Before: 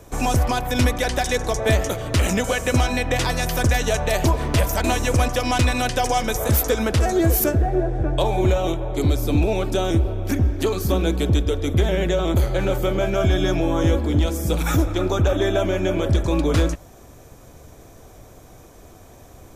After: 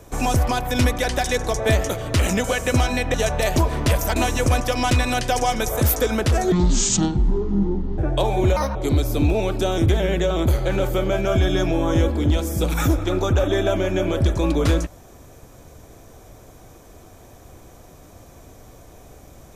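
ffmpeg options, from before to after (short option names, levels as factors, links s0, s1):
-filter_complex "[0:a]asplit=7[s0][s1][s2][s3][s4][s5][s6];[s0]atrim=end=3.142[s7];[s1]atrim=start=3.818:end=7.204[s8];[s2]atrim=start=7.2:end=7.99,asetpts=PTS-STARTPTS,asetrate=23814,aresample=44100[s9];[s3]atrim=start=7.986:end=8.574[s10];[s4]atrim=start=8.57:end=8.88,asetpts=PTS-STARTPTS,asetrate=72324,aresample=44100[s11];[s5]atrim=start=8.876:end=9.992[s12];[s6]atrim=start=11.748[s13];[s7][s8]acrossfade=d=0.004:c1=hsin:c2=hsin[s14];[s14][s9]acrossfade=d=0.004:c1=hsin:c2=hsin[s15];[s15][s10]acrossfade=d=0.004:c1=hsin:c2=hsin[s16];[s16][s11]acrossfade=d=0.004:c1=hsin:c2=hsin[s17];[s17][s12]acrossfade=d=0.004:c1=hsin:c2=hsin[s18];[s18][s13]acrossfade=d=0.004:c1=hsin:c2=hsin"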